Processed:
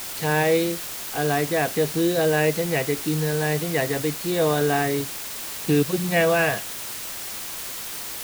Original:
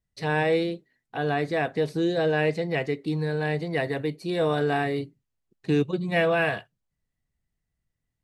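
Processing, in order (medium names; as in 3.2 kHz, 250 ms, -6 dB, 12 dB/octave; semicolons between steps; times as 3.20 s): word length cut 6-bit, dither triangular; trim +3 dB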